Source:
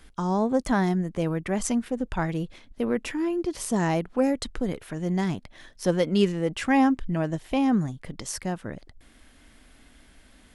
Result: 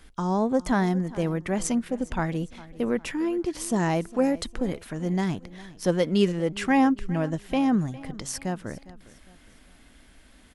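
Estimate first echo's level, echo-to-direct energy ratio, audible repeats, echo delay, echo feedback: −19.0 dB, −18.5 dB, 3, 406 ms, 40%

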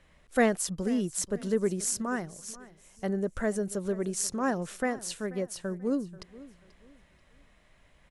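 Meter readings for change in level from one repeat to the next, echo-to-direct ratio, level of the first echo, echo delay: −10.5 dB, −18.5 dB, −19.0 dB, 485 ms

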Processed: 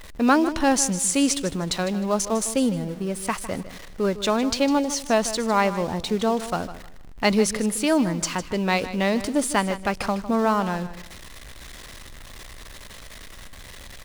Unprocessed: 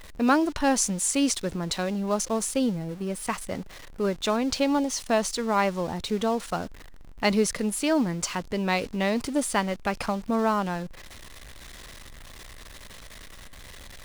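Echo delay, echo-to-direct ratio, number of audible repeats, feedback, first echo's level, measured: 154 ms, −13.0 dB, 2, 25%, −13.5 dB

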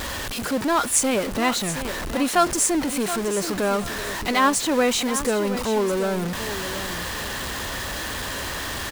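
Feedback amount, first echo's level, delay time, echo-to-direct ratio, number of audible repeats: 25%, −11.5 dB, 724 ms, −11.0 dB, 2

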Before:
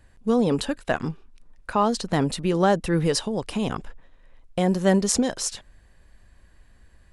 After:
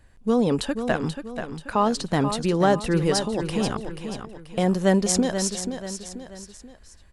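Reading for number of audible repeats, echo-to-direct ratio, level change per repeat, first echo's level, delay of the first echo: 3, −7.5 dB, −7.5 dB, −8.5 dB, 484 ms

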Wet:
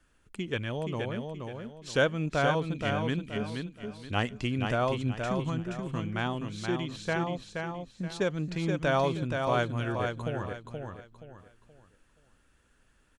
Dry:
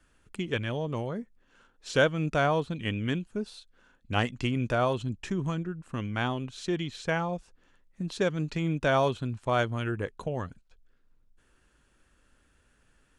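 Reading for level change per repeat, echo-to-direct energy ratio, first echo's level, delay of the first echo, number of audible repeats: −10.0 dB, −4.5 dB, −5.0 dB, 475 ms, 4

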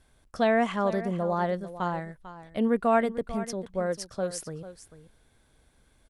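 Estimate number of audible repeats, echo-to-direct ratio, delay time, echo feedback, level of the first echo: 1, −14.0 dB, 446 ms, repeats not evenly spaced, −14.0 dB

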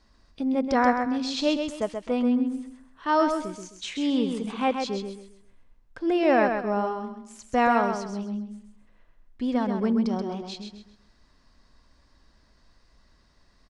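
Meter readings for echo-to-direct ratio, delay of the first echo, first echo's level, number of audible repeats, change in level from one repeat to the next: −5.5 dB, 131 ms, −6.0 dB, 3, −10.5 dB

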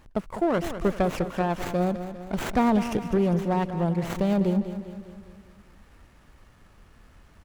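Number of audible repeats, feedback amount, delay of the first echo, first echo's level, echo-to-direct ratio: 5, 54%, 201 ms, −11.0 dB, −9.5 dB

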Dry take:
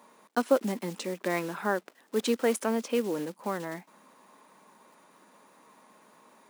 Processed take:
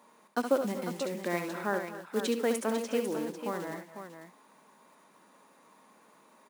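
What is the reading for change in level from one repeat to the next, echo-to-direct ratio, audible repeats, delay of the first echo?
repeats not evenly spaced, −4.5 dB, 3, 69 ms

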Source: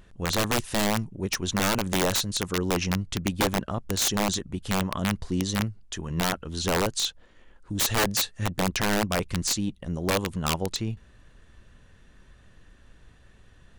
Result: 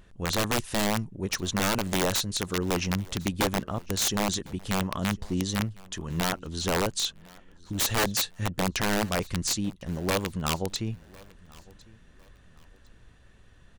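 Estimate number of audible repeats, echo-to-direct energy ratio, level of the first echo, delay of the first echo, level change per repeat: 2, −23.5 dB, −24.0 dB, 1,054 ms, −10.5 dB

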